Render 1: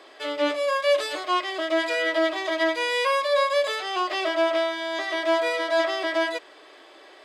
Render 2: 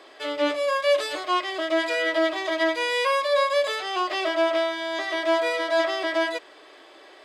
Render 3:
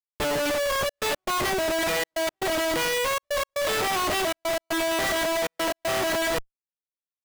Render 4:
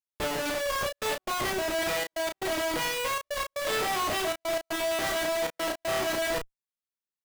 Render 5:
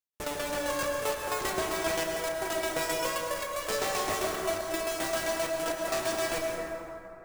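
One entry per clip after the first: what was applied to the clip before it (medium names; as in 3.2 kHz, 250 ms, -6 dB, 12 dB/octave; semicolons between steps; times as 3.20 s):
bass shelf 110 Hz +5.5 dB
Schmitt trigger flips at -34.5 dBFS; trance gate ".xxxxxx.x" 118 bpm -60 dB
doubling 32 ms -5 dB; trim -5 dB
self-modulated delay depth 0.096 ms; tremolo saw down 7.6 Hz, depth 75%; reverberation RT60 3.0 s, pre-delay 98 ms, DRR 0.5 dB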